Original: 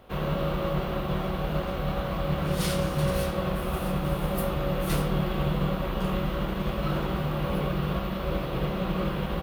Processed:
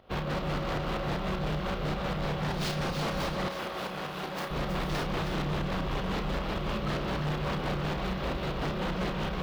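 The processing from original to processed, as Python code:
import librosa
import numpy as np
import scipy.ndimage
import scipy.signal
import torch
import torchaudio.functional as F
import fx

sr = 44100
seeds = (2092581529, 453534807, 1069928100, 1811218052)

y = fx.tracing_dist(x, sr, depth_ms=0.093)
y = fx.volume_shaper(y, sr, bpm=155, per_beat=2, depth_db=-11, release_ms=103.0, shape='slow start')
y = 10.0 ** (-27.0 / 20.0) * (np.abs((y / 10.0 ** (-27.0 / 20.0) + 3.0) % 4.0 - 2.0) - 1.0)
y = fx.high_shelf_res(y, sr, hz=6500.0, db=-8.5, q=1.5)
y = fx.doubler(y, sr, ms=33.0, db=-6.5)
y = y + 10.0 ** (-7.0 / 20.0) * np.pad(y, (int(320 * sr / 1000.0), 0))[:len(y)]
y = np.clip(y, -10.0 ** (-29.5 / 20.0), 10.0 ** (-29.5 / 20.0))
y = fx.highpass(y, sr, hz=460.0, slope=6, at=(3.48, 4.51))
y = F.gain(torch.from_numpy(y), 2.0).numpy()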